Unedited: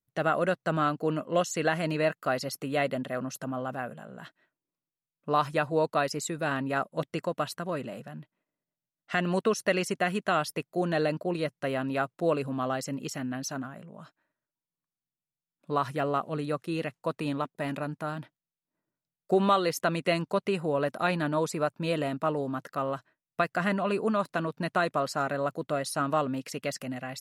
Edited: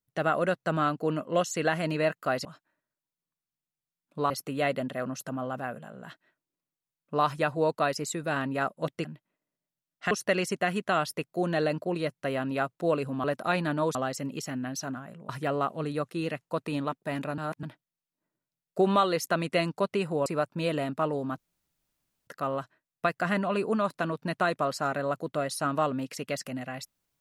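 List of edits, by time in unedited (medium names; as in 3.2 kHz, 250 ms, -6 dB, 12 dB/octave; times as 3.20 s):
7.20–8.12 s: delete
9.18–9.50 s: delete
13.97–15.82 s: move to 2.45 s
17.91–18.16 s: reverse
20.79–21.50 s: move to 12.63 s
22.62 s: insert room tone 0.89 s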